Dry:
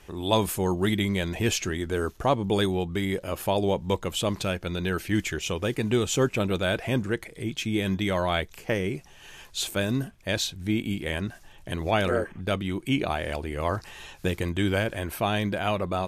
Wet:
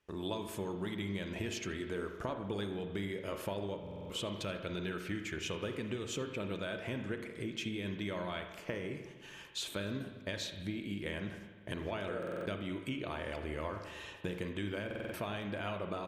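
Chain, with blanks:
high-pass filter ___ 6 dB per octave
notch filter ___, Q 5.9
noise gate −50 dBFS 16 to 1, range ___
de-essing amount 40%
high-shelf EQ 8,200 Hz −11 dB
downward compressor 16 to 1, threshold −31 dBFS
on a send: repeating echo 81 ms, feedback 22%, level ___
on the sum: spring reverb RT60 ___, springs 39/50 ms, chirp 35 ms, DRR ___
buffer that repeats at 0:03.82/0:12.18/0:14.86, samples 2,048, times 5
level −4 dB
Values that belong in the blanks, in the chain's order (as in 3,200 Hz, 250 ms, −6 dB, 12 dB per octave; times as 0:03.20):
120 Hz, 770 Hz, −19 dB, −23 dB, 1.4 s, 5.5 dB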